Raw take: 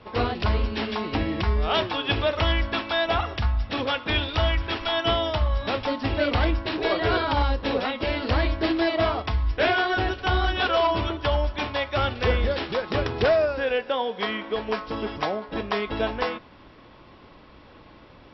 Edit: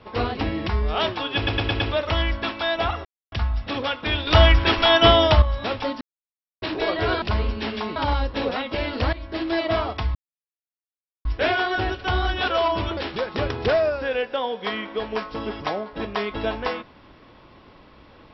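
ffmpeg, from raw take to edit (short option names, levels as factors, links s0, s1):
-filter_complex "[0:a]asplit=16[s0][s1][s2][s3][s4][s5][s6][s7][s8][s9][s10][s11][s12][s13][s14][s15];[s0]atrim=end=0.372[s16];[s1]atrim=start=1.108:end=2.212[s17];[s2]atrim=start=2.098:end=2.212[s18];[s3]atrim=start=2.098:end=2.212[s19];[s4]atrim=start=2.098:end=2.212[s20];[s5]atrim=start=2.098:end=3.35,asetpts=PTS-STARTPTS,afade=t=out:st=1.248:d=0.004:c=hsin,apad=pad_dur=0.27[s21];[s6]atrim=start=3.35:end=4.302,asetpts=PTS-STARTPTS,afade=t=in:d=0.004:c=hsin[s22];[s7]atrim=start=4.298:end=5.452,asetpts=PTS-STARTPTS,volume=2.82[s23];[s8]atrim=start=5.448:end=6.04,asetpts=PTS-STARTPTS,afade=t=out:st=0.588:d=0.004:c=hsin[s24];[s9]atrim=start=6.04:end=6.65,asetpts=PTS-STARTPTS,volume=0[s25];[s10]atrim=start=6.65:end=7.252,asetpts=PTS-STARTPTS,afade=t=in:d=0.004:c=hsin[s26];[s11]atrim=start=0.368:end=1.112[s27];[s12]atrim=start=7.248:end=8.42,asetpts=PTS-STARTPTS,afade=t=out:st=1.168:d=0.004:c=hsin:silence=0.141254[s28];[s13]atrim=start=8.42:end=9.44,asetpts=PTS-STARTPTS,afade=t=in:d=0.46:silence=0.141254,afade=t=out:st=1.016:d=0.004:c=hsin,apad=pad_dur=1.1[s29];[s14]atrim=start=9.44:end=11.162,asetpts=PTS-STARTPTS,afade=t=in:d=0.004:c=hsin[s30];[s15]atrim=start=12.528[s31];[s16][s17]acrossfade=d=0.004:c1=hsin:c2=hsin[s32];[s32][s18]acrossfade=d=0.004:c1=hsin:c2=hsin[s33];[s33][s19]acrossfade=d=0.004:c1=hsin:c2=hsin[s34];[s34][s20]acrossfade=d=0.004:c1=hsin:c2=hsin[s35];[s21][s22]concat=n=2:v=0:a=1[s36];[s35][s36]acrossfade=d=0.004:c1=hsin:c2=hsin[s37];[s37][s23]acrossfade=d=0.004:c1=hsin:c2=hsin[s38];[s24][s25][s26]concat=n=3:v=0:a=1[s39];[s38][s39]acrossfade=d=0.004:c1=hsin:c2=hsin[s40];[s40][s27]acrossfade=d=0.004:c1=hsin:c2=hsin[s41];[s28][s29][s30]concat=n=3:v=0:a=1[s42];[s41][s42]acrossfade=d=0.004:c1=hsin:c2=hsin[s43];[s43][s31]acrossfade=d=0.004:c1=hsin:c2=hsin"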